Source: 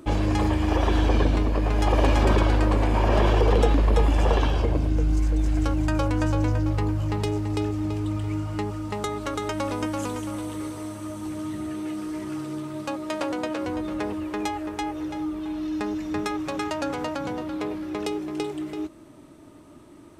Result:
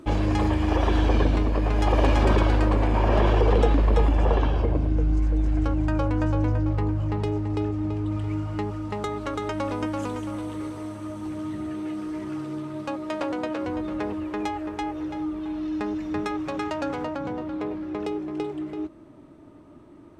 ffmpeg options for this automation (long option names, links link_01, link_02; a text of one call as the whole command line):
ffmpeg -i in.wav -af "asetnsamples=nb_out_samples=441:pad=0,asendcmd='2.69 lowpass f 3300;4.09 lowpass f 1600;8.12 lowpass f 2900;17.04 lowpass f 1500',lowpass=frequency=5300:poles=1" out.wav